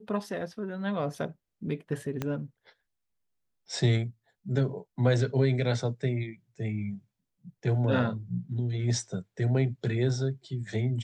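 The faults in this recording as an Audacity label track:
2.220000	2.220000	pop -17 dBFS

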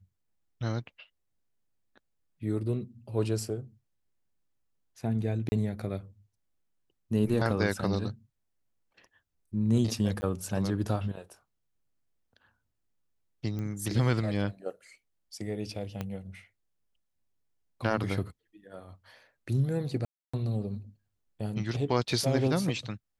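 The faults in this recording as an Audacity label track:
5.490000	5.520000	gap 30 ms
10.210000	10.220000	gap 10 ms
13.590000	13.590000	pop -25 dBFS
16.010000	16.010000	pop -20 dBFS
20.050000	20.340000	gap 0.285 s

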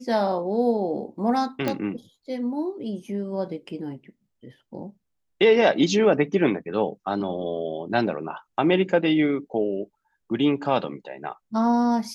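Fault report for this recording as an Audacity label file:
1.680000	1.680000	pop -11 dBFS

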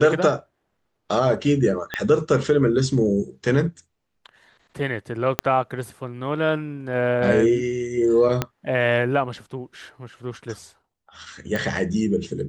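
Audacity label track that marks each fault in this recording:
1.940000	1.940000	pop -11 dBFS
5.390000	5.390000	pop -3 dBFS
8.420000	8.420000	pop -7 dBFS
11.560000	11.560000	pop

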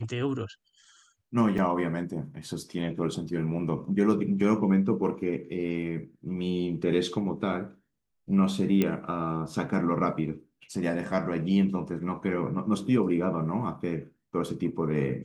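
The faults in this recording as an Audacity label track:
1.580000	1.580000	gap 3.5 ms
8.820000	8.820000	pop -12 dBFS

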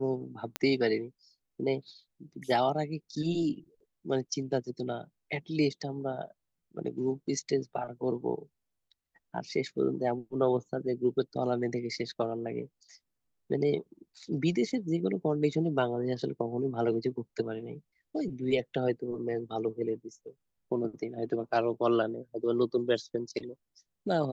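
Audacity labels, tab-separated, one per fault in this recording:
0.560000	0.560000	pop -14 dBFS

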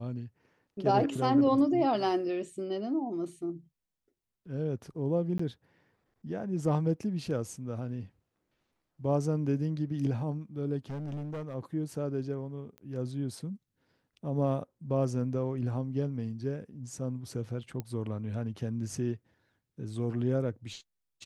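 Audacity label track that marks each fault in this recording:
5.380000	5.390000	gap 14 ms
10.900000	11.550000	clipped -34 dBFS
12.780000	12.780000	pop -33 dBFS
17.800000	17.800000	pop -23 dBFS

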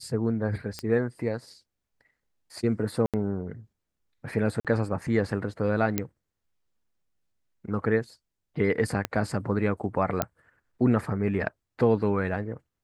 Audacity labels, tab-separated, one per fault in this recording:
0.790000	0.790000	pop -18 dBFS
3.060000	3.140000	gap 77 ms
4.600000	4.650000	gap 47 ms
5.980000	5.980000	pop -10 dBFS
9.050000	9.050000	pop -12 dBFS
10.220000	10.220000	pop -9 dBFS

